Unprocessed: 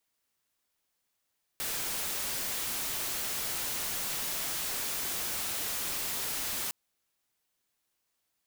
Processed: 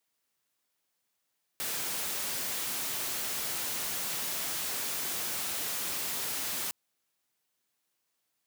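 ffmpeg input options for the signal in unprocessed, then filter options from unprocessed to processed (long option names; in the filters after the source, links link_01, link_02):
-f lavfi -i "anoisesrc=color=white:amplitude=0.0346:duration=5.11:sample_rate=44100:seed=1"
-af "highpass=100"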